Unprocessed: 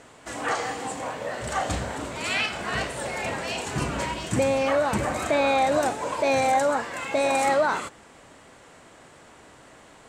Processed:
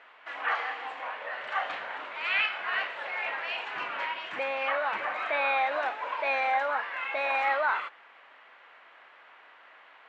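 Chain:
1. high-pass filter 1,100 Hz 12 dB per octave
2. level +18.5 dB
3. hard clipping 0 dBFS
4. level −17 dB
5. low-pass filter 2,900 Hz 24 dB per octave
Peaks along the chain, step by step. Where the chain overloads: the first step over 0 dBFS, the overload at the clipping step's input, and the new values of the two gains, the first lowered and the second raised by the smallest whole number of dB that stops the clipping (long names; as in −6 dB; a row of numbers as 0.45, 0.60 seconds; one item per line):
−15.0, +3.5, 0.0, −17.0, −16.5 dBFS
step 2, 3.5 dB
step 2 +14.5 dB, step 4 −13 dB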